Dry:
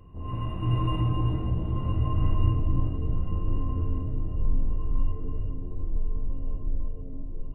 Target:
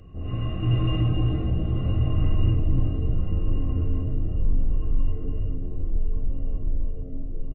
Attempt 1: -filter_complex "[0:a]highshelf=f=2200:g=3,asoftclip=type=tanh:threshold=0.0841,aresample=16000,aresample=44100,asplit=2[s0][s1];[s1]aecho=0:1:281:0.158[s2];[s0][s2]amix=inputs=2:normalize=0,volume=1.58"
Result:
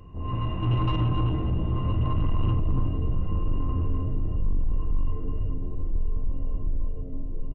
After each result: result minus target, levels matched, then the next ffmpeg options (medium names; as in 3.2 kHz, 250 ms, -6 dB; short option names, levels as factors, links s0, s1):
1 kHz band +9.5 dB; saturation: distortion +9 dB
-filter_complex "[0:a]asuperstop=centerf=950:order=20:qfactor=4.1,highshelf=f=2200:g=3,asoftclip=type=tanh:threshold=0.0841,aresample=16000,aresample=44100,asplit=2[s0][s1];[s1]aecho=0:1:281:0.158[s2];[s0][s2]amix=inputs=2:normalize=0,volume=1.58"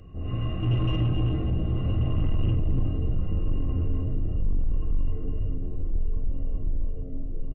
saturation: distortion +9 dB
-filter_complex "[0:a]asuperstop=centerf=950:order=20:qfactor=4.1,highshelf=f=2200:g=3,asoftclip=type=tanh:threshold=0.188,aresample=16000,aresample=44100,asplit=2[s0][s1];[s1]aecho=0:1:281:0.158[s2];[s0][s2]amix=inputs=2:normalize=0,volume=1.58"